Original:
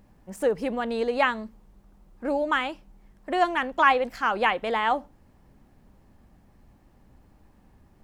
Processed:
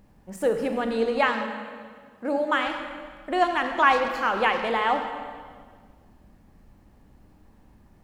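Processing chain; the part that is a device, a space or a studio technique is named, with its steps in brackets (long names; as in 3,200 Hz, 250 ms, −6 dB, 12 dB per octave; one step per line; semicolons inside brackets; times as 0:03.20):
saturated reverb return (on a send at −4 dB: convolution reverb RT60 1.7 s, pre-delay 30 ms + soft clipping −18.5 dBFS, distortion −14 dB)
0:01.28–0:02.67: on the sum: high-pass filter 120 Hz 12 dB per octave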